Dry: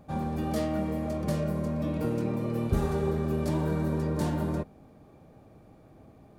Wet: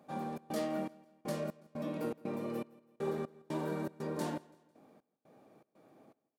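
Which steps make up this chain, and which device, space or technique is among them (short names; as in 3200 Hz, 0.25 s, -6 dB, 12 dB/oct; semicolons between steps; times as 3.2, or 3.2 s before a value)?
Bessel high-pass 260 Hz, order 4; trance gate with a delay (step gate "xxx.xxx...xx.." 120 bpm -60 dB; feedback echo 0.166 s, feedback 42%, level -22.5 dB); gain -4 dB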